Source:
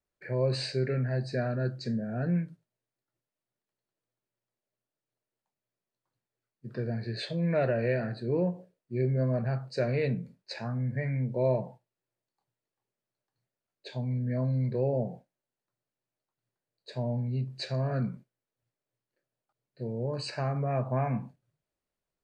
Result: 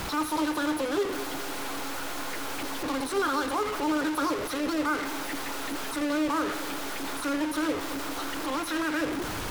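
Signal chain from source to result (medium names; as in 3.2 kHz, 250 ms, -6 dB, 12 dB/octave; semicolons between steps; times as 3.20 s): one-bit delta coder 64 kbps, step -27 dBFS; treble shelf 2.4 kHz -9 dB; in parallel at +1.5 dB: peak limiter -24 dBFS, peak gain reduction 7.5 dB; on the sum: two-band feedback delay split 340 Hz, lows 490 ms, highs 196 ms, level -12.5 dB; speed mistake 33 rpm record played at 78 rpm; trim -4.5 dB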